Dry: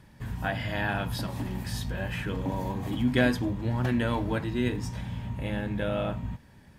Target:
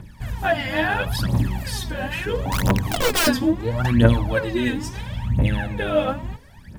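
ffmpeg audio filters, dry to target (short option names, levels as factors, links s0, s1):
-filter_complex "[0:a]asettb=1/sr,asplit=3[s0][s1][s2];[s0]atrim=end=2.504[s3];[s1]atrim=start=2.5:end=3.27,asetpts=PTS-STARTPTS,afade=t=in:d=0.004:c=qsin,afade=t=out:st=0.766:d=0.004:c=qsin,aeval=exprs='(mod(14.1*val(0)+1,2)-1)/14.1':c=same[s4];[s2]atrim=start=3.266[s5];[s3][s4]acrossfade=d=0.004:c1=hsin:c2=qsin[s6];[s6][s5]acrossfade=d=0.004:c1=qsin:c2=hsin,aphaser=in_gain=1:out_gain=1:delay=3.9:decay=0.78:speed=0.74:type=triangular,bandreject=f=137.8:t=h:w=4,bandreject=f=275.6:t=h:w=4,bandreject=f=413.4:t=h:w=4,bandreject=f=551.2:t=h:w=4,bandreject=f=689:t=h:w=4,bandreject=f=826.8:t=h:w=4,bandreject=f=964.6:t=h:w=4,bandreject=f=1102.4:t=h:w=4,volume=1.68"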